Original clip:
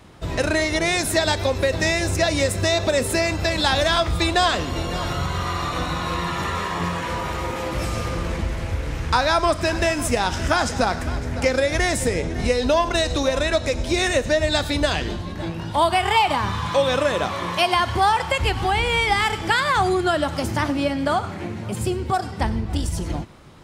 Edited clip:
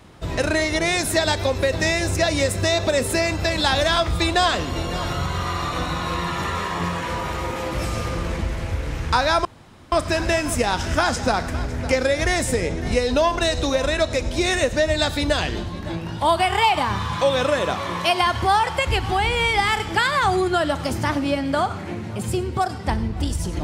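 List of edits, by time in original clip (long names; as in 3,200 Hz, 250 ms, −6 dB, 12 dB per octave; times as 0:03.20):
0:09.45: splice in room tone 0.47 s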